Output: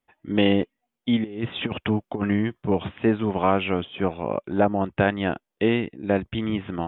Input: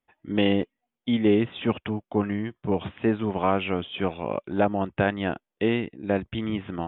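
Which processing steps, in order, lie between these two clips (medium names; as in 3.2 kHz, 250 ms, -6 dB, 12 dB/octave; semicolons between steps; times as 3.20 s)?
1.24–2.63 s: compressor with a negative ratio -26 dBFS, ratio -0.5; 3.84–4.84 s: dynamic bell 3.3 kHz, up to -7 dB, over -48 dBFS, Q 1.1; trim +2.5 dB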